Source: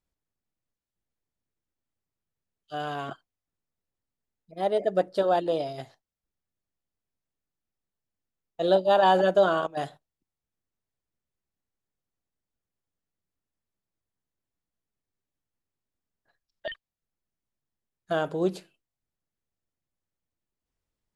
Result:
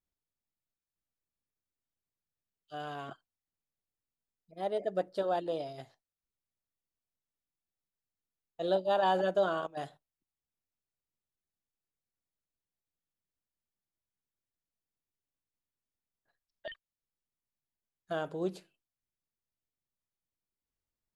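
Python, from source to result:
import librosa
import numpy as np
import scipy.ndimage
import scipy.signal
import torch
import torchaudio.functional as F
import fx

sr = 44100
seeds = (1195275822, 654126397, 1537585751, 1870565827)

y = x * 10.0 ** (-8.0 / 20.0)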